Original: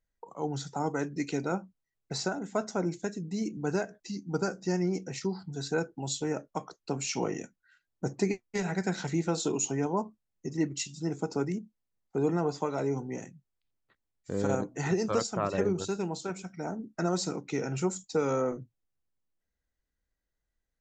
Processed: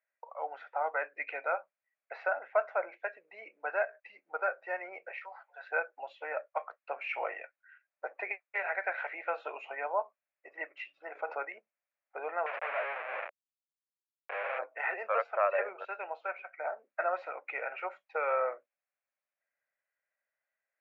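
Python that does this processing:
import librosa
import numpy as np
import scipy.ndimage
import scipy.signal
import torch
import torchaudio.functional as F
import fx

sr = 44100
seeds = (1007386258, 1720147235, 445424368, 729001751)

y = fx.cheby1_bandpass(x, sr, low_hz=530.0, high_hz=7300.0, order=4, at=(5.11, 5.71))
y = fx.env_flatten(y, sr, amount_pct=50, at=(11.15, 11.6))
y = fx.schmitt(y, sr, flips_db=-42.0, at=(12.46, 14.59))
y = scipy.signal.sosfilt(scipy.signal.cheby1(4, 1.0, [570.0, 2500.0], 'bandpass', fs=sr, output='sos'), y)
y = fx.peak_eq(y, sr, hz=910.0, db=-8.0, octaves=0.67)
y = y * 10.0 ** (7.5 / 20.0)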